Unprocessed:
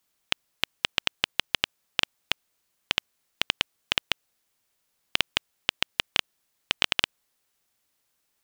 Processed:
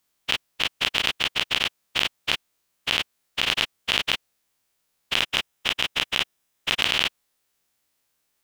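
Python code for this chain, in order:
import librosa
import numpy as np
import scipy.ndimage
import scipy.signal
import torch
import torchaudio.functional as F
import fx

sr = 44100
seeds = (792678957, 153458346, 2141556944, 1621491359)

y = fx.spec_dilate(x, sr, span_ms=60)
y = fx.notch(y, sr, hz=4400.0, q=12.0, at=(5.17, 6.82))
y = y * librosa.db_to_amplitude(-2.5)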